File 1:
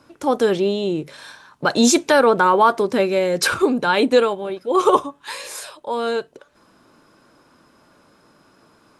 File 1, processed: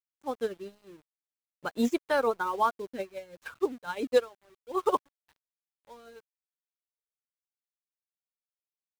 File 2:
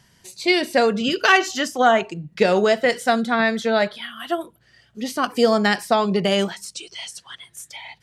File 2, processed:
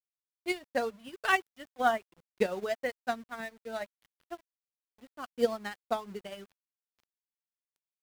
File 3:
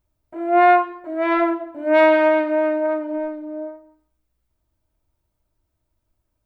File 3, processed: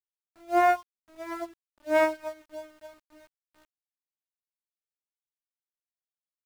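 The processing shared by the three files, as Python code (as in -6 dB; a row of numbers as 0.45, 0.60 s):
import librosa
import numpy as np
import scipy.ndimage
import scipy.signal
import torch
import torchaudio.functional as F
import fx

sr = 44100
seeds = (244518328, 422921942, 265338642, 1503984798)

y = scipy.signal.medfilt(x, 9)
y = fx.dereverb_blind(y, sr, rt60_s=1.2)
y = fx.add_hum(y, sr, base_hz=60, snr_db=28)
y = np.where(np.abs(y) >= 10.0 ** (-28.0 / 20.0), y, 0.0)
y = fx.upward_expand(y, sr, threshold_db=-26.0, expansion=2.5)
y = librosa.util.normalize(y) * 10.0 ** (-12 / 20.0)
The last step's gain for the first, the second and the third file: -6.5, -8.0, -6.0 dB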